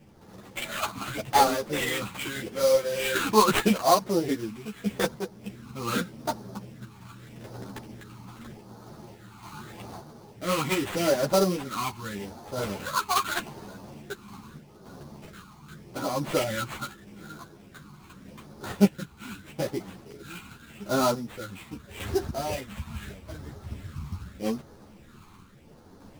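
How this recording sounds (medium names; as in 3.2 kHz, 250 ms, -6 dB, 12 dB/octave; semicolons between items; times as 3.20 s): phasing stages 12, 0.82 Hz, lowest notch 530–2900 Hz; aliases and images of a low sample rate 5.4 kHz, jitter 20%; random-step tremolo; a shimmering, thickened sound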